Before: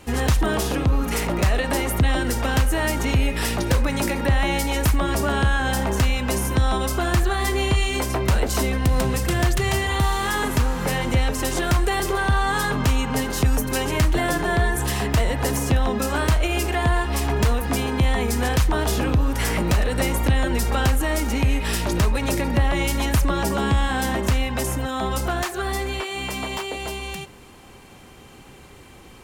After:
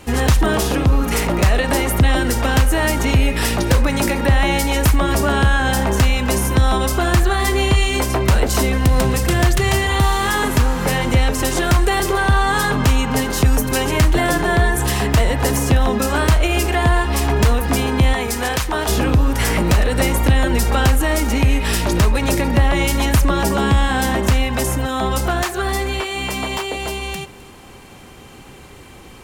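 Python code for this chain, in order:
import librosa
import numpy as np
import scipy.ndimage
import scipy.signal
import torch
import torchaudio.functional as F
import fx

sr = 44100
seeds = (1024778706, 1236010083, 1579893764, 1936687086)

p1 = fx.low_shelf(x, sr, hz=280.0, db=-11.0, at=(18.13, 18.89))
p2 = p1 + fx.echo_single(p1, sr, ms=260, db=-22.5, dry=0)
y = F.gain(torch.from_numpy(p2), 5.0).numpy()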